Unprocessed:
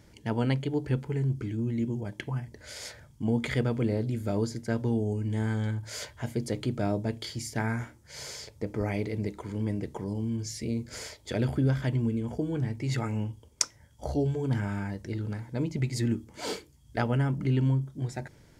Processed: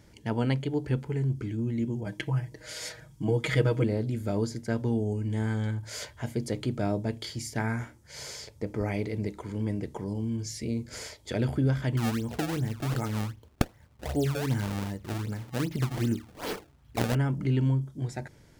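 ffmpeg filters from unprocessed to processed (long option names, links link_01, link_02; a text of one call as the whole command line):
ffmpeg -i in.wav -filter_complex "[0:a]asettb=1/sr,asplit=3[link_01][link_02][link_03];[link_01]atrim=end=2.064[link_04];[link_02]atrim=start=2.06:end=3.84,asetpts=PTS-STARTPTS,afade=type=in:duration=0.004:curve=qsin,afade=type=out:start_time=1.776:duration=0.004:curve=qsin,aecho=1:1:6.3:1,atrim=end_sample=78498[link_05];[link_03]atrim=start=3.836[link_06];[link_04][link_05]acrossfade=duration=0.004:curve1=hsin:curve2=qsin[link_07];[link_07][link_06]acrossfade=duration=0.004:curve1=qsin:curve2=hsin,asettb=1/sr,asplit=3[link_08][link_09][link_10];[link_08]atrim=end=11.974[link_11];[link_09]atrim=start=11.97:end=17.15,asetpts=PTS-STARTPTS,afade=type=in:duration=0.004:curve=qsin,afade=type=out:start_time=5.176:duration=0.004:curve=qsin,acrusher=samples=25:mix=1:aa=0.000001:lfo=1:lforange=40:lforate=2.6[link_12];[link_10]atrim=start=17.146[link_13];[link_11][link_12]acrossfade=duration=0.004:curve1=hsin:curve2=qsin[link_14];[link_14][link_13]acrossfade=duration=0.004:curve1=qsin:curve2=hsin" out.wav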